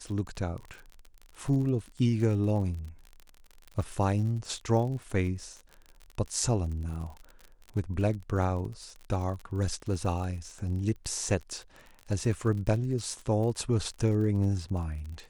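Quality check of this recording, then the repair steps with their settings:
crackle 40 per s -37 dBFS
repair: de-click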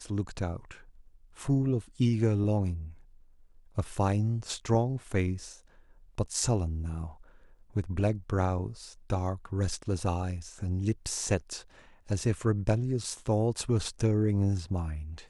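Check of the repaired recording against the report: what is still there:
nothing left

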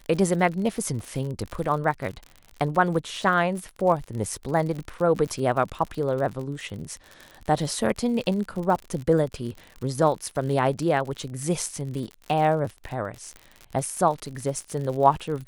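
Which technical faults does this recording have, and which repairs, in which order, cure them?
crackle 56 per s -31 dBFS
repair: de-click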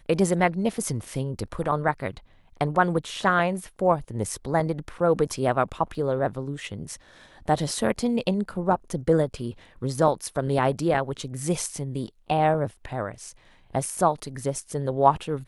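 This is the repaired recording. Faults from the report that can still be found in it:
nothing left

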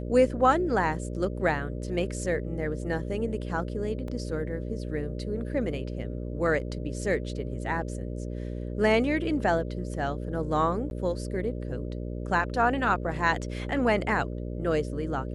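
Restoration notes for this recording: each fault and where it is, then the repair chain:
buzz 60 Hz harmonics 10 -34 dBFS
4.08 s: dropout 2.5 ms
10.90–10.91 s: dropout 11 ms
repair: de-hum 60 Hz, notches 10; interpolate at 4.08 s, 2.5 ms; interpolate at 10.90 s, 11 ms

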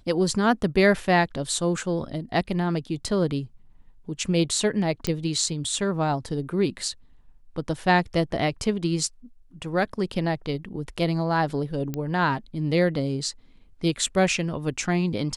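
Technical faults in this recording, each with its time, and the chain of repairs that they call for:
5.07 s: pop -11 dBFS
11.94 s: pop -16 dBFS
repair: de-click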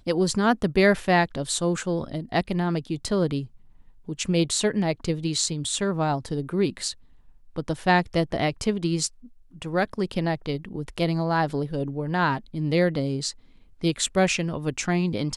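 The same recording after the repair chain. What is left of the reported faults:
11.94 s: pop

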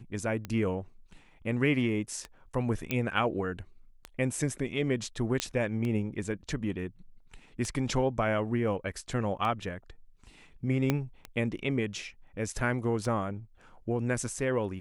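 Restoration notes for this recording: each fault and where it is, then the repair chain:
tick 33 1/3 rpm -22 dBFS
2.91 s: pop -14 dBFS
5.40 s: pop -11 dBFS
10.90 s: pop -12 dBFS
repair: de-click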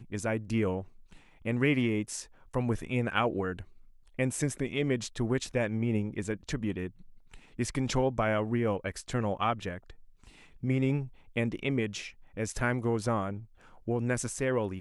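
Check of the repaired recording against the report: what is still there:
2.91 s: pop
10.90 s: pop

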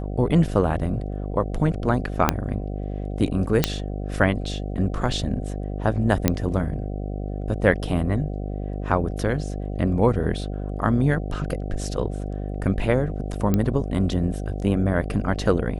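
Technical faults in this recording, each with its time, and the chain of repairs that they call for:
buzz 50 Hz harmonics 15 -29 dBFS
2.29 s: pop -2 dBFS
3.64 s: pop -2 dBFS
6.28 s: pop -3 dBFS
13.54 s: pop -9 dBFS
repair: de-click; de-hum 50 Hz, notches 15

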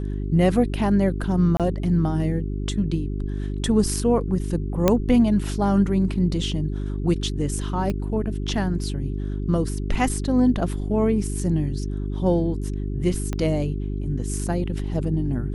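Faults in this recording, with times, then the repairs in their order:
hum 50 Hz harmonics 8 -27 dBFS
1.57–1.60 s: dropout 27 ms
4.88 s: pop -4 dBFS
7.90 s: pop -16 dBFS
13.33 s: pop -14 dBFS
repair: de-click; de-hum 50 Hz, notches 8; interpolate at 1.57 s, 27 ms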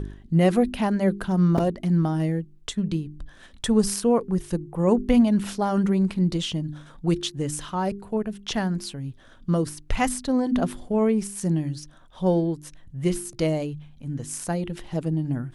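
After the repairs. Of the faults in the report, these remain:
7.90 s: pop
13.33 s: pop

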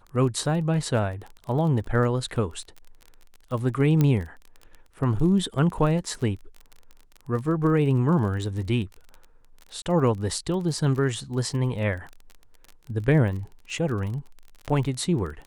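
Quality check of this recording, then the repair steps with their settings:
crackle 29 per s -33 dBFS
4.01 s: pop -10 dBFS
9.82–9.86 s: dropout 38 ms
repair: de-click; interpolate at 9.82 s, 38 ms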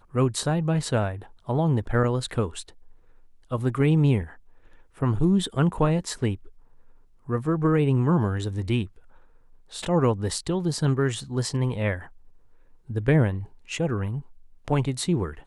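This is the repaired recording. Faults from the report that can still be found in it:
4.01 s: pop

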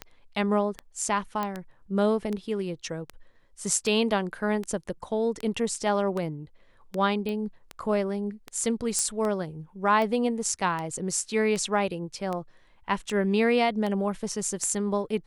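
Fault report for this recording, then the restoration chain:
tick 78 rpm -19 dBFS
1.43 s: pop -16 dBFS
7.29 s: pop -21 dBFS
8.99 s: pop -13 dBFS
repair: de-click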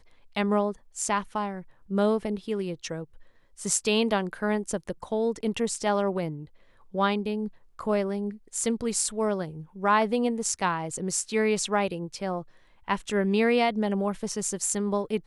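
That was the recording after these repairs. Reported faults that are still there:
nothing left

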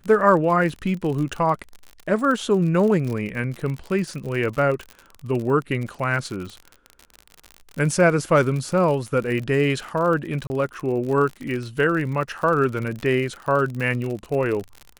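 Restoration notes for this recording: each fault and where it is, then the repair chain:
crackle 53 per s -28 dBFS
10.47–10.50 s: dropout 30 ms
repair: de-click; interpolate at 10.47 s, 30 ms

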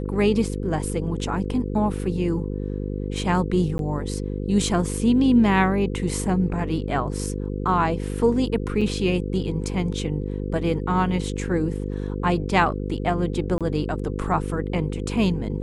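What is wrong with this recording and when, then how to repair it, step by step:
buzz 50 Hz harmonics 10 -28 dBFS
3.78–3.79 s: dropout 12 ms
8.81–8.82 s: dropout 5.3 ms
13.58–13.61 s: dropout 27 ms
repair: de-hum 50 Hz, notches 10; interpolate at 3.78 s, 12 ms; interpolate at 8.81 s, 5.3 ms; interpolate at 13.58 s, 27 ms

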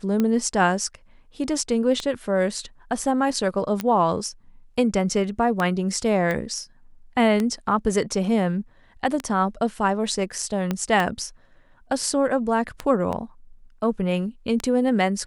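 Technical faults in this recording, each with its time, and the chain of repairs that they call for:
tick 33 1/3 rpm -11 dBFS
3.81 s: pop -13 dBFS
6.31 s: pop -14 dBFS
10.71 s: pop -11 dBFS
13.12–13.13 s: dropout 7.9 ms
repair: de-click; interpolate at 13.12 s, 7.9 ms

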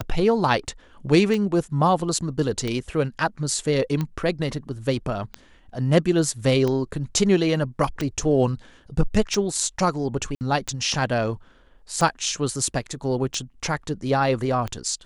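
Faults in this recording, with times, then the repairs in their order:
tick 45 rpm -14 dBFS
10.35–10.41 s: dropout 59 ms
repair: de-click; interpolate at 10.35 s, 59 ms

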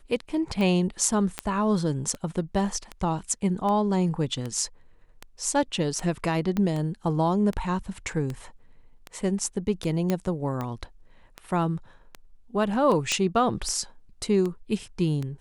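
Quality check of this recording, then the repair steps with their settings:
tick 78 rpm -19 dBFS
1.39 s: pop -11 dBFS
6.57 s: pop -15 dBFS
10.10 s: pop -12 dBFS
13.12 s: pop -10 dBFS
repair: de-click

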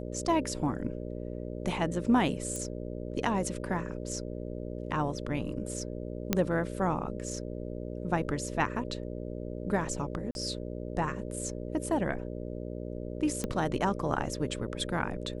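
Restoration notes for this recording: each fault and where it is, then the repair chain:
buzz 60 Hz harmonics 10 -38 dBFS
2.56 s: pop -23 dBFS
6.33 s: pop -10 dBFS
10.31–10.35 s: dropout 41 ms
13.44 s: pop -18 dBFS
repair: de-click; de-hum 60 Hz, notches 10; interpolate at 10.31 s, 41 ms

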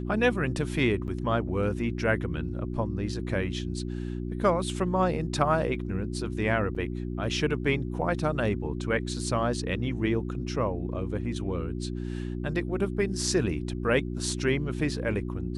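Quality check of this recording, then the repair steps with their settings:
hum 60 Hz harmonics 6 -33 dBFS
1.07–1.08 s: dropout 9.3 ms
6.75 s: dropout 4.9 ms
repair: de-hum 60 Hz, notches 6; interpolate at 1.07 s, 9.3 ms; interpolate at 6.75 s, 4.9 ms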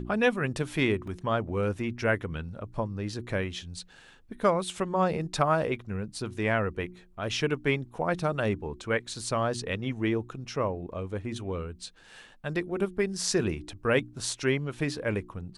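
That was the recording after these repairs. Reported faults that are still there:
nothing left

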